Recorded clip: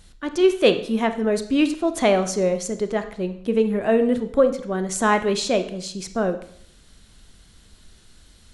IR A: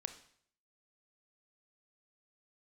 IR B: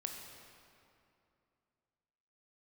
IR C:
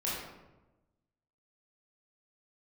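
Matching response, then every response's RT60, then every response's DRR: A; 0.60, 2.6, 1.1 s; 9.0, 2.5, -7.5 dB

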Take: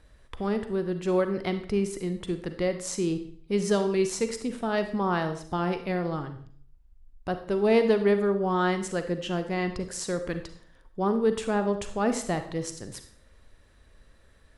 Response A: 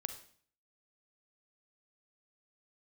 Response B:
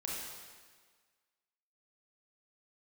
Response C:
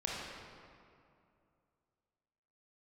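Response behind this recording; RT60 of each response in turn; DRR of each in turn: A; 0.50, 1.6, 2.5 s; 8.0, -4.5, -4.5 dB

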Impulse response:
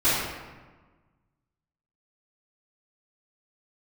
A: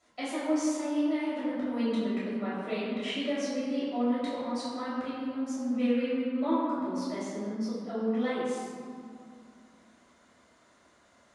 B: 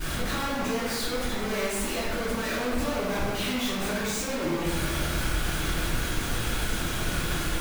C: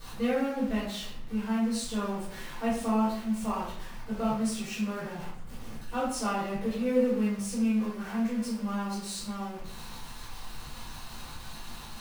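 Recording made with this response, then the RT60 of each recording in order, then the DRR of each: B; 2.3, 1.3, 0.65 s; -11.0, -17.0, -10.5 dB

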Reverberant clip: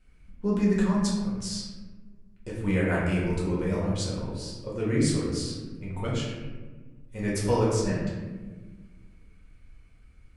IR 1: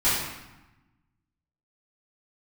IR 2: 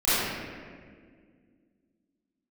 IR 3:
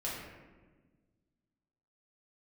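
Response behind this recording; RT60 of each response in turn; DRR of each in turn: 3; 1.0, 1.9, 1.4 s; -13.5, -16.0, -7.0 dB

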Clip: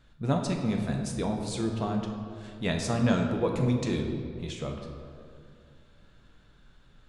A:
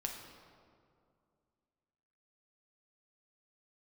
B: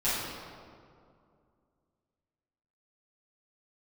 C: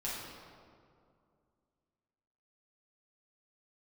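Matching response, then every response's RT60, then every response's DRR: A; 2.3, 2.3, 2.3 s; 1.5, -14.0, -8.0 dB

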